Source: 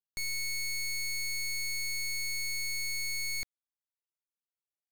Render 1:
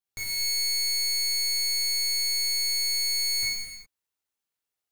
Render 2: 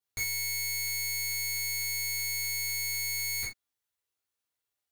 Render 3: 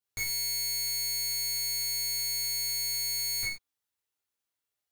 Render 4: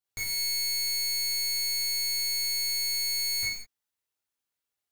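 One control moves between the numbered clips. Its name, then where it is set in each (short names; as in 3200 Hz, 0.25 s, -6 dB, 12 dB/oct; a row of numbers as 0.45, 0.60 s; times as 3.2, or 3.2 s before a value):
non-linear reverb, gate: 0.44, 0.11, 0.16, 0.24 s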